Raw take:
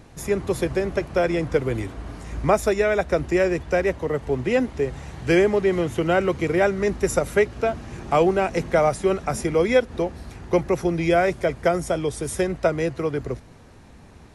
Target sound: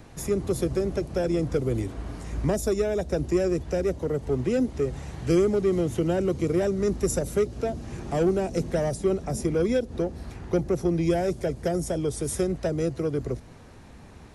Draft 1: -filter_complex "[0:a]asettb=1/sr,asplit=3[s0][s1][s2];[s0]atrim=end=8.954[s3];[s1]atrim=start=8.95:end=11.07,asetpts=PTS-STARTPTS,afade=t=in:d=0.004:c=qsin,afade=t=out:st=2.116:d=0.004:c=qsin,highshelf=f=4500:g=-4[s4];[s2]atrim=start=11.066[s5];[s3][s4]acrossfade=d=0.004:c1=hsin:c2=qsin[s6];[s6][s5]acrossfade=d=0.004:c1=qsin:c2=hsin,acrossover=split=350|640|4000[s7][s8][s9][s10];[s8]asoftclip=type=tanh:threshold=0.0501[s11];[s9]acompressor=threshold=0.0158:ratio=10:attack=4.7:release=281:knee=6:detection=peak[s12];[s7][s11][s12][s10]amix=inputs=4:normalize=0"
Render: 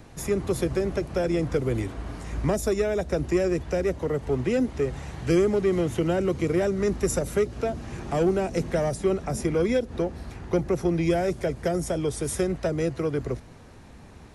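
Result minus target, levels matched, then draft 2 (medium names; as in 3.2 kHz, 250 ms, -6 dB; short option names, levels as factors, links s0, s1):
compression: peak gain reduction -8.5 dB
-filter_complex "[0:a]asettb=1/sr,asplit=3[s0][s1][s2];[s0]atrim=end=8.954[s3];[s1]atrim=start=8.95:end=11.07,asetpts=PTS-STARTPTS,afade=t=in:d=0.004:c=qsin,afade=t=out:st=2.116:d=0.004:c=qsin,highshelf=f=4500:g=-4[s4];[s2]atrim=start=11.066[s5];[s3][s4]acrossfade=d=0.004:c1=hsin:c2=qsin[s6];[s6][s5]acrossfade=d=0.004:c1=qsin:c2=hsin,acrossover=split=350|640|4000[s7][s8][s9][s10];[s8]asoftclip=type=tanh:threshold=0.0501[s11];[s9]acompressor=threshold=0.00531:ratio=10:attack=4.7:release=281:knee=6:detection=peak[s12];[s7][s11][s12][s10]amix=inputs=4:normalize=0"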